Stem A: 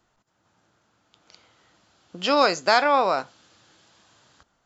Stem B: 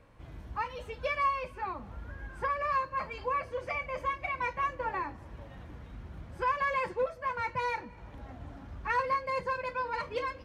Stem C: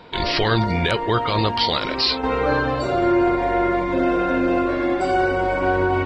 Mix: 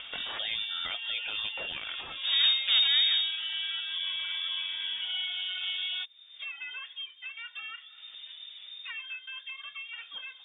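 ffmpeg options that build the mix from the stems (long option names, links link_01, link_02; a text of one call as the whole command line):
ffmpeg -i stem1.wav -i stem2.wav -i stem3.wav -filter_complex "[0:a]equalizer=frequency=200:width_type=o:width=2.8:gain=-9.5,aeval=exprs='abs(val(0))':channel_layout=same,lowpass=1300,volume=-2dB[link_01];[1:a]volume=-19dB[link_02];[2:a]volume=-15.5dB[link_03];[link_01][link_02][link_03]amix=inputs=3:normalize=0,acompressor=mode=upward:threshold=-30dB:ratio=2.5,lowpass=frequency=3100:width_type=q:width=0.5098,lowpass=frequency=3100:width_type=q:width=0.6013,lowpass=frequency=3100:width_type=q:width=0.9,lowpass=frequency=3100:width_type=q:width=2.563,afreqshift=-3700" out.wav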